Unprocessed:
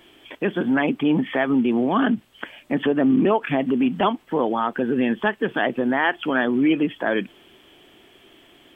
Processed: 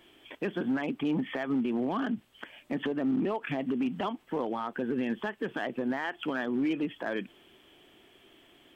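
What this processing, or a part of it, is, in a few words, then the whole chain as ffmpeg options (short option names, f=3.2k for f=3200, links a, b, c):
limiter into clipper: -af "alimiter=limit=-15dB:level=0:latency=1:release=135,asoftclip=type=hard:threshold=-16.5dB,volume=-7dB"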